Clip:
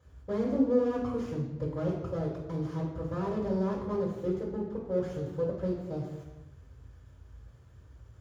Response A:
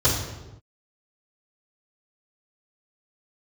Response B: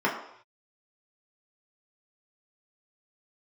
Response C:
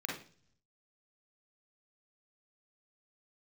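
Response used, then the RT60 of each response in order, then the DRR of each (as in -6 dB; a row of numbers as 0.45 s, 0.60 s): A; no single decay rate, no single decay rate, 0.45 s; -9.0 dB, -4.5 dB, -3.0 dB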